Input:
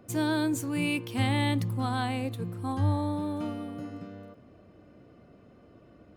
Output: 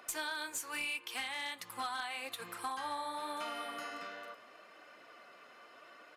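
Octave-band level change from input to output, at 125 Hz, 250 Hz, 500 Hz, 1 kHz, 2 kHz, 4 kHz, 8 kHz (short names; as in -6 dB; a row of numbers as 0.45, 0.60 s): -38.0, -23.5, -10.5, -4.5, -2.5, -3.0, -0.5 dB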